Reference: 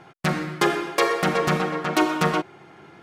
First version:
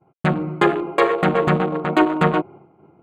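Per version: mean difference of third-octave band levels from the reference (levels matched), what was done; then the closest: 7.5 dB: local Wiener filter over 25 samples; expander -42 dBFS; boxcar filter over 8 samples; trim +5.5 dB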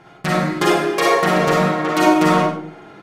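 4.5 dB: doubling 44 ms -7 dB; on a send: delay 93 ms -12.5 dB; on the sum: algorithmic reverb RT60 0.56 s, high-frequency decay 0.3×, pre-delay 15 ms, DRR -3 dB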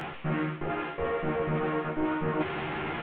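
11.5 dB: one-bit delta coder 16 kbps, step -33 dBFS; reverse; compression 6:1, threshold -35 dBFS, peak gain reduction 16.5 dB; reverse; doubling 13 ms -3.5 dB; trim +4.5 dB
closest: second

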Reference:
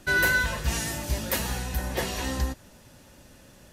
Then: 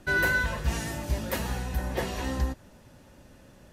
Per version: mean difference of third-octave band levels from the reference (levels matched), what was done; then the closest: 3.0 dB: treble shelf 2.5 kHz -8.5 dB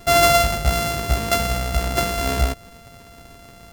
4.0 dB: sorted samples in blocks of 64 samples; trim +8 dB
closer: first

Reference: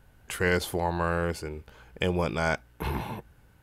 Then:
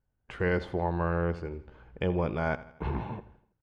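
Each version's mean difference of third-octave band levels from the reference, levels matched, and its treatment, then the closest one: 7.0 dB: gate with hold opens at -46 dBFS; tape spacing loss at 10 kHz 35 dB; feedback delay 82 ms, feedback 48%, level -17 dB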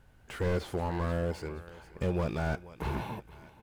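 4.5 dB: median filter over 3 samples; feedback delay 473 ms, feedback 36%, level -20 dB; slew-rate limiter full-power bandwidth 31 Hz; trim -2.5 dB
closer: second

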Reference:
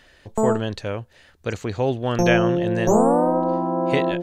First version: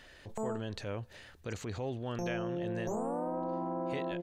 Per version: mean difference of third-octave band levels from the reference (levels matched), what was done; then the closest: 4.0 dB: compression 6:1, threshold -31 dBFS, peak gain reduction 17.5 dB; transient shaper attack -6 dB, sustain +4 dB; echo from a far wall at 44 m, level -29 dB; trim -2.5 dB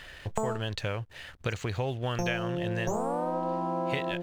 6.0 dB: FFT filter 150 Hz 0 dB, 230 Hz -8 dB, 3 kHz +4 dB, 4.7 kHz 0 dB; compression 6:1, threshold -35 dBFS, peak gain reduction 19.5 dB; hysteresis with a dead band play -54.5 dBFS; trim +6.5 dB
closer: first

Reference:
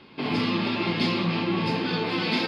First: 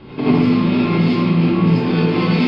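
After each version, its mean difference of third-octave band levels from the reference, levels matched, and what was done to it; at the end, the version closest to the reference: 6.0 dB: tilt EQ -3 dB/octave; compression 6:1, threshold -26 dBFS, peak gain reduction 11 dB; gated-style reverb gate 120 ms rising, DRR -7.5 dB; trim +5.5 dB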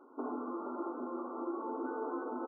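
17.0 dB: compression, threshold -28 dBFS, peak gain reduction 8 dB; brick-wall FIR band-pass 240–1500 Hz; on a send: delay 215 ms -10.5 dB; on the sum: trim -4.5 dB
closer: first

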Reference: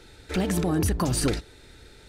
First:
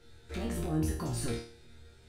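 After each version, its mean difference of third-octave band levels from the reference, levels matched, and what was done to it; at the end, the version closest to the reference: 3.5 dB: bass shelf 220 Hz +7 dB; chord resonator D#2 fifth, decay 0.44 s; in parallel at -12 dB: saturation -37 dBFS, distortion -7 dB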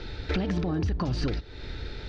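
8.5 dB: steep low-pass 5.2 kHz 36 dB/octave; bass shelf 130 Hz +7.5 dB; compression 6:1, threshold -35 dBFS, peak gain reduction 17 dB; trim +9 dB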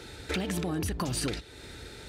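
6.5 dB: high-pass 52 Hz; dynamic bell 3 kHz, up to +6 dB, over -46 dBFS, Q 0.97; compression 4:1, threshold -37 dBFS, peak gain reduction 14.5 dB; trim +6 dB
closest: first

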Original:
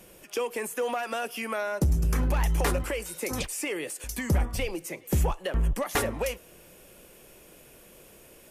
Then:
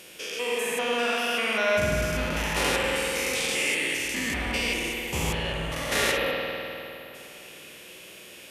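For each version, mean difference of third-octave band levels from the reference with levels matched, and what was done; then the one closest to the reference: 7.5 dB: spectrogram pixelated in time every 200 ms; frequency weighting D; time-frequency box 6.17–7.15 s, 1.5–11 kHz -17 dB; spring tank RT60 3 s, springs 50 ms, chirp 30 ms, DRR -1 dB; trim +2.5 dB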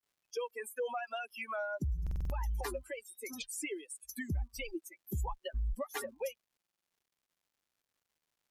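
15.5 dB: expander on every frequency bin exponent 3; peak limiter -27.5 dBFS, peak gain reduction 8.5 dB; crackle 310 per s -66 dBFS; buffer glitch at 2.02/6.58 s, samples 2048, times 5; trim -1.5 dB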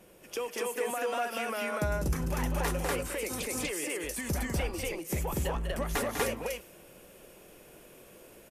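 5.5 dB: bass shelf 120 Hz -6 dB; in parallel at -2 dB: compression, threshold -38 dBFS, peak gain reduction 14.5 dB; on the sum: loudspeakers at several distances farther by 68 m -7 dB, 83 m 0 dB; tape noise reduction on one side only decoder only; trim -7 dB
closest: third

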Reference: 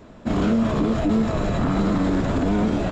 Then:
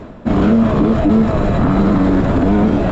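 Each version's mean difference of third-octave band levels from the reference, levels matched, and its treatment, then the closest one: 2.5 dB: low-pass 2 kHz 6 dB/octave; reverse; upward compressor, threshold -24 dBFS; reverse; trim +8 dB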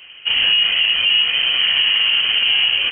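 18.0 dB: frequency inversion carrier 3.1 kHz; trim +4 dB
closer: first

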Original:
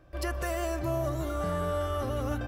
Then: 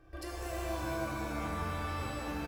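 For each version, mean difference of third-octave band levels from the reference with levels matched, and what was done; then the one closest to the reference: 6.0 dB: comb 2.6 ms, depth 50%; compression, threshold -34 dBFS, peak gain reduction 8.5 dB; pitch-shifted reverb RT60 2.1 s, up +7 st, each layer -2 dB, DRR -1.5 dB; trim -5 dB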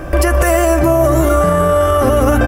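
3.0 dB: fifteen-band graphic EQ 100 Hz -7 dB, 4 kHz -10 dB, 10 kHz +4 dB; compression, threshold -38 dBFS, peak gain reduction 10.5 dB; doubling 12 ms -14 dB; loudness maximiser +35.5 dB; trim -3 dB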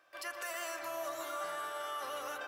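10.0 dB: high-pass 1.1 kHz 12 dB/octave; peak limiter -32.5 dBFS, peak gain reduction 8.5 dB; on a send: filtered feedback delay 118 ms, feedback 80%, low-pass 2 kHz, level -7.5 dB; on the sum: trim +1.5 dB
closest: second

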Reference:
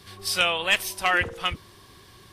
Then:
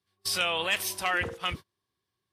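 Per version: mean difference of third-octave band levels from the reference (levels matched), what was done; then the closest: 8.5 dB: high-pass 76 Hz 12 dB/octave; in parallel at -2 dB: compressor with a negative ratio -29 dBFS, ratio -1; on the sum: gate -30 dBFS, range -33 dB; trim -7.5 dB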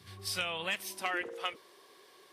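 4.5 dB: peaking EQ 2.1 kHz +2.5 dB 0.34 oct; compression, threshold -22 dBFS, peak gain reduction 7 dB; high-pass sweep 100 Hz -> 460 Hz, 0.38–1.46 s; trim -8.5 dB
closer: second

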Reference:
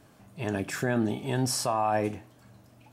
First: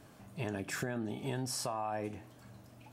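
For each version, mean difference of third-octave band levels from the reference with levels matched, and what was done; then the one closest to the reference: 5.0 dB: compression, threshold -34 dBFS, peak gain reduction 12 dB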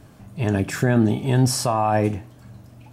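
3.0 dB: bass shelf 180 Hz +11 dB; trim +5 dB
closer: second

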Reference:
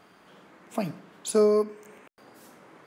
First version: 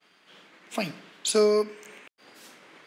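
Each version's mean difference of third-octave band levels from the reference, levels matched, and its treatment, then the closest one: 3.5 dB: expander -49 dBFS; frequency weighting D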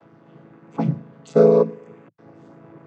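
6.5 dB: vocoder on a held chord major triad, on A2; tape noise reduction on one side only decoder only; trim +8.5 dB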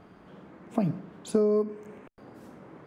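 5.0 dB: tilt EQ -3.5 dB/octave; compression 6:1, threshold -21 dBFS, peak gain reduction 9 dB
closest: first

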